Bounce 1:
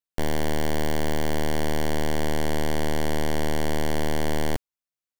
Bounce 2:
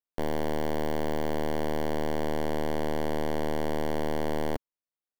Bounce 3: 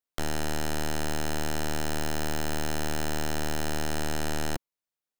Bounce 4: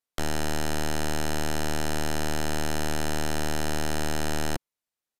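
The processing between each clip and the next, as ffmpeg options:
-af "equalizer=f=250:t=o:w=1:g=4,equalizer=f=500:t=o:w=1:g=6,equalizer=f=1k:t=o:w=1:g=5,equalizer=f=8k:t=o:w=1:g=-5,volume=-8dB"
-af "aeval=exprs='(mod(17.8*val(0)+1,2)-1)/17.8':c=same,volume=2dB"
-af "aresample=32000,aresample=44100,volume=2dB"

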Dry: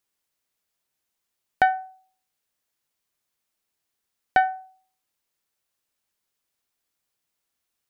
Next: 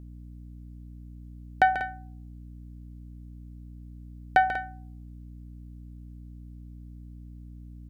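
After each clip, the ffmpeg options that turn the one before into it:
-af "aecho=1:1:139.9|192.4:0.316|0.251,aeval=exprs='val(0)+0.00891*(sin(2*PI*60*n/s)+sin(2*PI*2*60*n/s)/2+sin(2*PI*3*60*n/s)/3+sin(2*PI*4*60*n/s)/4+sin(2*PI*5*60*n/s)/5)':c=same,volume=-1.5dB"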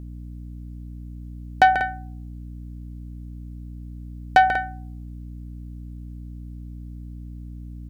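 -af "asoftclip=type=tanh:threshold=-12.5dB,volume=7.5dB"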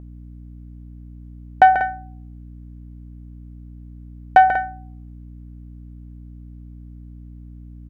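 -af "firequalizer=gain_entry='entry(280,0);entry(670,7);entry(4100,-9)':delay=0.05:min_phase=1,volume=-2.5dB"

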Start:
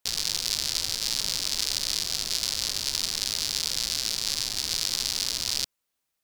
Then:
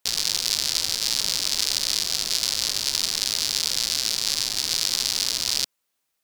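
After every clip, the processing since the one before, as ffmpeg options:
-af "lowshelf=f=130:g=-7.5,volume=4dB"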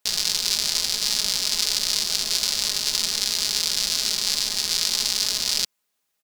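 -af "aecho=1:1:4.8:0.51"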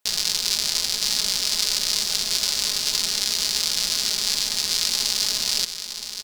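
-af "aecho=1:1:970:0.335"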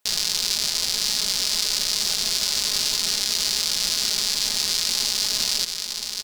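-af "alimiter=limit=-9dB:level=0:latency=1:release=38,volume=3dB"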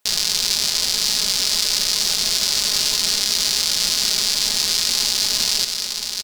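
-af "aecho=1:1:233:0.266,volume=3.5dB"

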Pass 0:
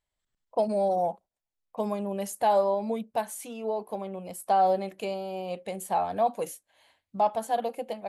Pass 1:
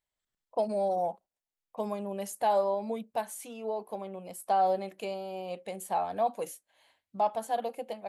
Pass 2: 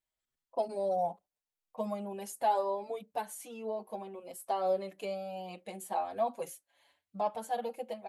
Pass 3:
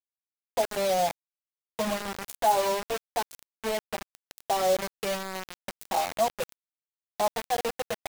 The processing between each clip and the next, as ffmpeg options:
-af "lowshelf=f=140:g=-7,volume=-3dB"
-filter_complex "[0:a]asplit=2[a][b];[b]adelay=5.9,afreqshift=0.51[c];[a][c]amix=inputs=2:normalize=1"
-af "acrusher=bits=5:mix=0:aa=0.000001,volume=5.5dB"

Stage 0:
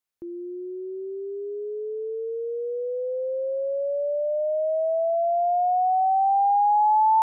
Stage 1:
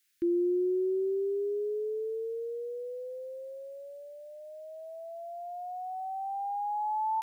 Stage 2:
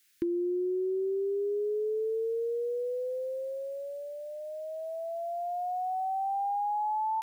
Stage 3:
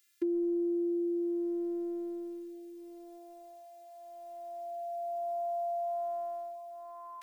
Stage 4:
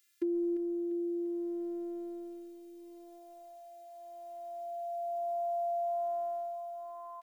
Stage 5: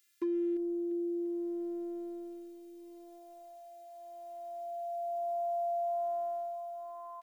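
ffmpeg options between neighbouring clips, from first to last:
-af "firequalizer=gain_entry='entry(210,0);entry(330,8);entry(590,-24);entry(1600,13)':delay=0.05:min_phase=1,volume=2dB"
-af "acompressor=threshold=-35dB:ratio=10,volume=6.5dB"
-af "highpass=f=250:w=0.5412,highpass=f=250:w=1.3066,afftfilt=real='hypot(re,im)*cos(PI*b)':imag='0':win_size=512:overlap=0.75"
-af "aecho=1:1:347|694|1041|1388|1735:0.266|0.122|0.0563|0.0259|0.0119,volume=-1dB"
-af "asoftclip=type=hard:threshold=-28.5dB"

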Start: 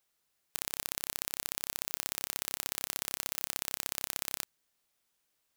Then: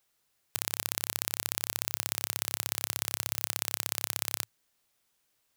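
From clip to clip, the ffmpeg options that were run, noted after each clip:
-af "equalizer=f=110:w=4.7:g=7,volume=3.5dB"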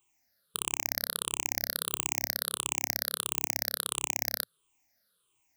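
-af "afftfilt=real='re*pow(10,22/40*sin(2*PI*(0.67*log(max(b,1)*sr/1024/100)/log(2)-(-1.5)*(pts-256)/sr)))':imag='im*pow(10,22/40*sin(2*PI*(0.67*log(max(b,1)*sr/1024/100)/log(2)-(-1.5)*(pts-256)/sr)))':win_size=1024:overlap=0.75,volume=-4.5dB"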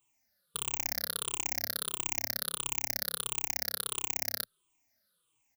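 -filter_complex "[0:a]asplit=2[a][b];[b]adelay=3.7,afreqshift=-1.9[c];[a][c]amix=inputs=2:normalize=1,volume=1dB"

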